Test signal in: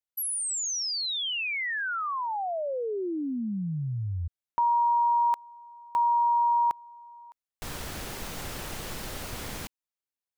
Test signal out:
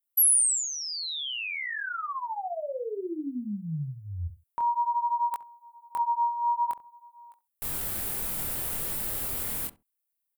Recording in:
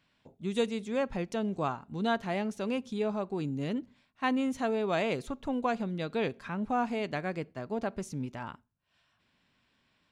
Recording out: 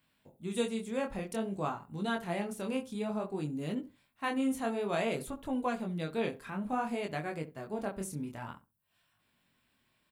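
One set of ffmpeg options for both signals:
ffmpeg -i in.wav -filter_complex "[0:a]flanger=delay=19:depth=7.8:speed=0.55,aexciter=amount=5.8:drive=4.8:freq=8300,asplit=2[link_01][link_02];[link_02]adelay=67,lowpass=frequency=900:poles=1,volume=-13dB,asplit=2[link_03][link_04];[link_04]adelay=67,lowpass=frequency=900:poles=1,volume=0.19[link_05];[link_01][link_03][link_05]amix=inputs=3:normalize=0" out.wav

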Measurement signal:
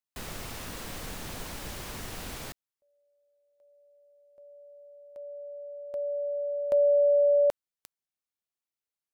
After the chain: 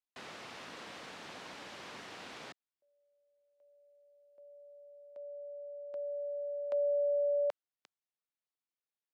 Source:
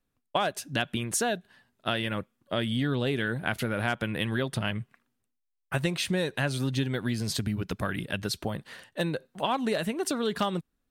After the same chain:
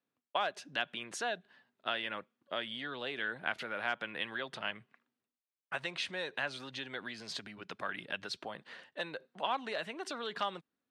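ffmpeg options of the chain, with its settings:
ffmpeg -i in.wav -filter_complex "[0:a]acrossover=split=600|2300[link_01][link_02][link_03];[link_01]acompressor=threshold=-43dB:ratio=4:attack=3.2:release=42:knee=1:detection=rms[link_04];[link_04][link_02][link_03]amix=inputs=3:normalize=0,highpass=220,lowpass=4300,volume=-4dB" out.wav

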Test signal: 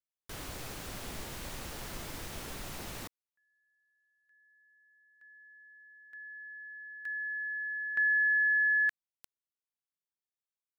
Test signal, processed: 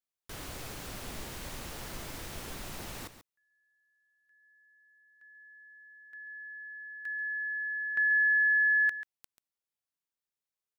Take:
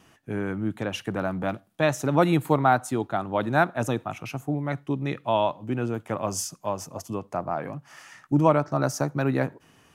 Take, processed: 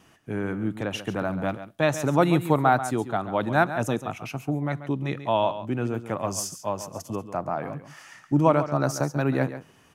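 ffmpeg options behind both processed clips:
ffmpeg -i in.wav -af "aecho=1:1:138:0.251" out.wav

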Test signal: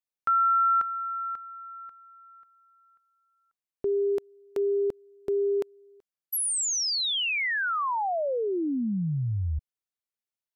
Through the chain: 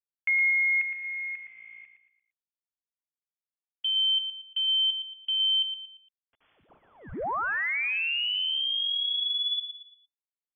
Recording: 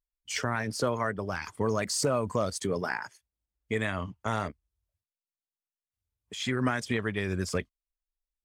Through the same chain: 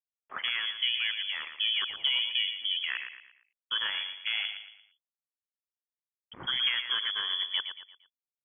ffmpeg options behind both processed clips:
ffmpeg -i in.wav -af "afwtdn=0.0141,aresample=16000,aeval=exprs='val(0)*gte(abs(val(0)),0.00266)':channel_layout=same,aresample=44100,aecho=1:1:115|230|345|460:0.376|0.143|0.0543|0.0206,lowpass=frequency=3000:width_type=q:width=0.5098,lowpass=frequency=3000:width_type=q:width=0.6013,lowpass=frequency=3000:width_type=q:width=0.9,lowpass=frequency=3000:width_type=q:width=2.563,afreqshift=-3500,volume=-1.5dB" out.wav

